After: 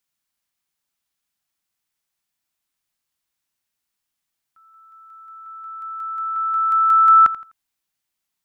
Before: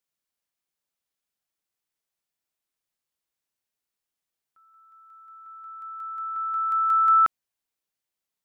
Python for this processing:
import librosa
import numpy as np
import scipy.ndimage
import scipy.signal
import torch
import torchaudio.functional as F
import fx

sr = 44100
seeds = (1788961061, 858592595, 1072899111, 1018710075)

p1 = fx.peak_eq(x, sr, hz=480.0, db=-8.0, octaves=0.88)
p2 = p1 + fx.echo_feedback(p1, sr, ms=84, feedback_pct=28, wet_db=-16.0, dry=0)
y = p2 * librosa.db_to_amplitude(6.5)